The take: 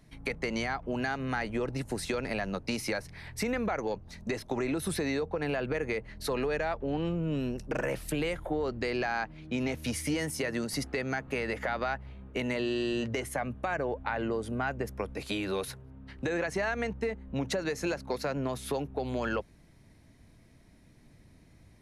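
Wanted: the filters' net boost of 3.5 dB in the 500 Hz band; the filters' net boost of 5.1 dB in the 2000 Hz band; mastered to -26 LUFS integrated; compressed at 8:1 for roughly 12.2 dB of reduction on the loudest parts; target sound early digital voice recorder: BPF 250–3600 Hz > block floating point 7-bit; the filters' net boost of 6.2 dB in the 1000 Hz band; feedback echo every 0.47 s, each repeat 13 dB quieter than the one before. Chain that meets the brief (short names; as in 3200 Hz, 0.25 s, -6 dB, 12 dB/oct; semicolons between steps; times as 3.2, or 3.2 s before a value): bell 500 Hz +3 dB; bell 1000 Hz +6.5 dB; bell 2000 Hz +4.5 dB; compressor 8:1, threshold -36 dBFS; BPF 250–3600 Hz; feedback echo 0.47 s, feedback 22%, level -13 dB; block floating point 7-bit; gain +15 dB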